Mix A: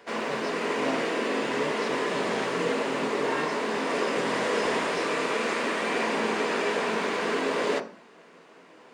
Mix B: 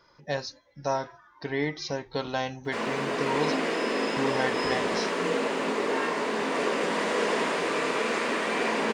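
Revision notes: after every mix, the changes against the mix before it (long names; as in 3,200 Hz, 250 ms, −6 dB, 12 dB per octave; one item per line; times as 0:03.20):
speech +9.0 dB
background: entry +2.65 s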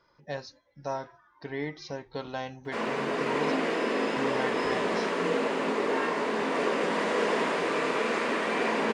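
speech −5.0 dB
master: add high-shelf EQ 4,000 Hz −6.5 dB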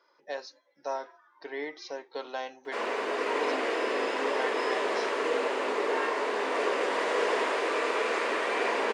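master: add high-pass filter 340 Hz 24 dB per octave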